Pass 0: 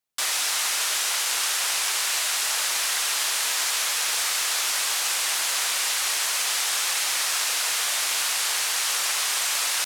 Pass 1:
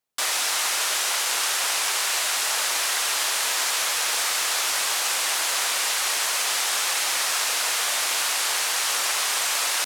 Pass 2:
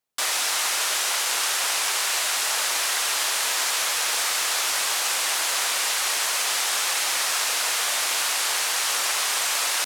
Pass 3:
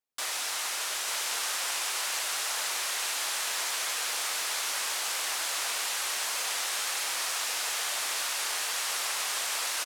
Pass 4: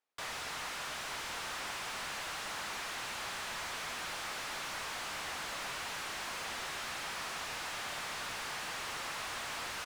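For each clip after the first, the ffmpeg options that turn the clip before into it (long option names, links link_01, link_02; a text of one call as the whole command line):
ffmpeg -i in.wav -af "equalizer=frequency=490:width_type=o:width=3:gain=5" out.wav
ffmpeg -i in.wav -af anull out.wav
ffmpeg -i in.wav -af "aecho=1:1:891:0.562,volume=-8.5dB" out.wav
ffmpeg -i in.wav -filter_complex "[0:a]asplit=2[link_01][link_02];[link_02]highpass=frequency=720:poles=1,volume=25dB,asoftclip=type=tanh:threshold=-18.5dB[link_03];[link_01][link_03]amix=inputs=2:normalize=0,lowpass=frequency=1400:poles=1,volume=-6dB,volume=-8.5dB" out.wav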